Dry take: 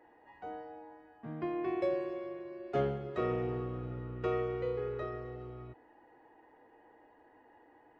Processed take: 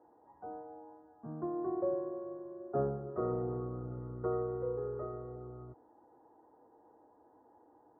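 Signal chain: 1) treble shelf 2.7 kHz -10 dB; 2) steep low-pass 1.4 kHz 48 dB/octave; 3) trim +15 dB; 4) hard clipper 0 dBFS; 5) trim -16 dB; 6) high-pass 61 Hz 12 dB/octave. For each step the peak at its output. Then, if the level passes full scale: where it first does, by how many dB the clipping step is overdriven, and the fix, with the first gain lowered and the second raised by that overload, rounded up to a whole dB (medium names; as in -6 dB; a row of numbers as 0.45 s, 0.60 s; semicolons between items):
-20.5 dBFS, -20.5 dBFS, -5.5 dBFS, -5.5 dBFS, -21.5 dBFS, -21.0 dBFS; nothing clips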